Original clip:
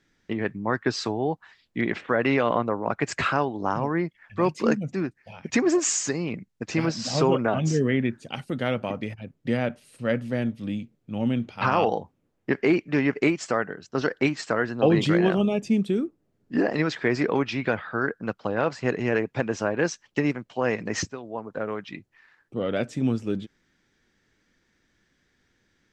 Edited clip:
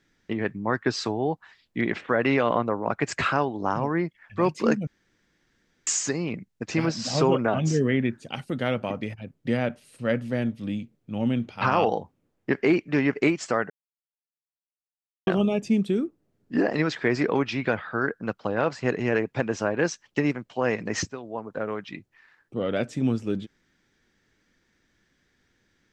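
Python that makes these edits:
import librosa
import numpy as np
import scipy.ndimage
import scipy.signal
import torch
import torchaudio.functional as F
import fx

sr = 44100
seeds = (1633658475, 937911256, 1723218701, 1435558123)

y = fx.edit(x, sr, fx.room_tone_fill(start_s=4.87, length_s=1.0),
    fx.silence(start_s=13.7, length_s=1.57), tone=tone)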